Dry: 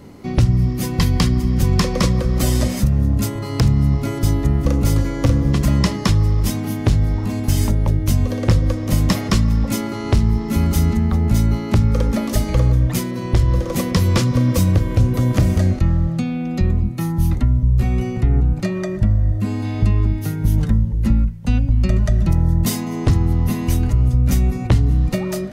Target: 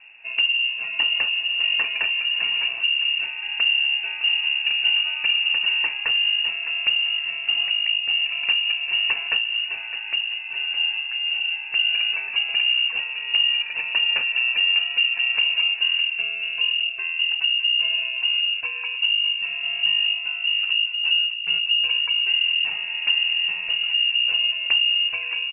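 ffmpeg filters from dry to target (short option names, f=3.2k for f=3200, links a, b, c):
-filter_complex "[0:a]asplit=3[a][b][c];[a]afade=t=out:st=9.37:d=0.02[d];[b]flanger=delay=7.7:depth=5.2:regen=45:speed=1.9:shape=triangular,afade=t=in:st=9.37:d=0.02,afade=t=out:st=11.74:d=0.02[e];[c]afade=t=in:st=11.74:d=0.02[f];[d][e][f]amix=inputs=3:normalize=0,asplit=2[g][h];[h]adelay=610,lowpass=f=2k:p=1,volume=-10dB,asplit=2[i][j];[j]adelay=610,lowpass=f=2k:p=1,volume=0.48,asplit=2[k][l];[l]adelay=610,lowpass=f=2k:p=1,volume=0.48,asplit=2[m][n];[n]adelay=610,lowpass=f=2k:p=1,volume=0.48,asplit=2[o][p];[p]adelay=610,lowpass=f=2k:p=1,volume=0.48[q];[g][i][k][m][o][q]amix=inputs=6:normalize=0,lowpass=f=2.5k:t=q:w=0.5098,lowpass=f=2.5k:t=q:w=0.6013,lowpass=f=2.5k:t=q:w=0.9,lowpass=f=2.5k:t=q:w=2.563,afreqshift=-2900,volume=-7dB"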